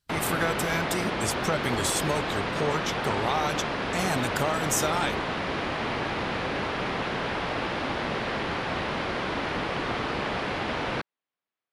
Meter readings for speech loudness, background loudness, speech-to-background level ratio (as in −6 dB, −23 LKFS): −29.5 LKFS, −29.5 LKFS, 0.0 dB